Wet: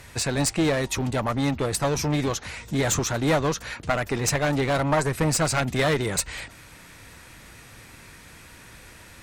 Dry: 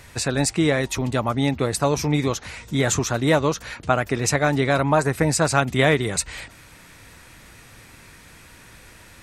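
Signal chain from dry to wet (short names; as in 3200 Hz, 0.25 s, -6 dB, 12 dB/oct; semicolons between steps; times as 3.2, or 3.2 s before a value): one-sided clip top -21.5 dBFS; crackle 40/s -52 dBFS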